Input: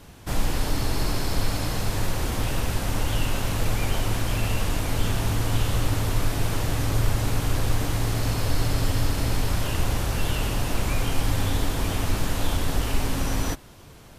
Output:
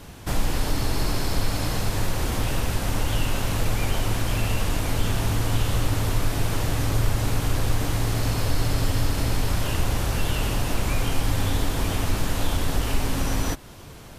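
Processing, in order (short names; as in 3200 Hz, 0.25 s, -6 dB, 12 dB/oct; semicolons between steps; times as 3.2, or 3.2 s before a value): in parallel at 0 dB: compressor, threshold -31 dBFS, peak gain reduction 15.5 dB; 6.69–7.16 on the sum: requantised 12-bit, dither triangular; gain -1.5 dB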